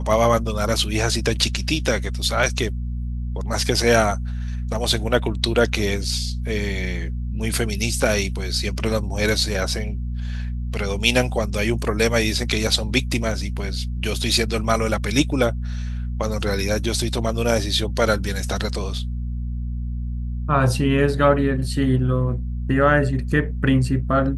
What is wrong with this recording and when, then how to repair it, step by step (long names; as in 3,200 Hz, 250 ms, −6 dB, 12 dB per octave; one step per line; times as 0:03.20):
mains hum 60 Hz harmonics 4 −26 dBFS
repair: hum removal 60 Hz, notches 4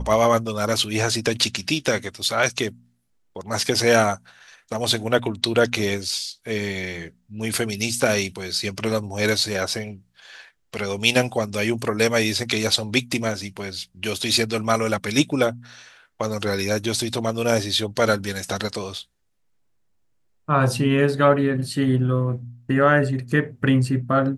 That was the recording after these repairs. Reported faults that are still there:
none of them is left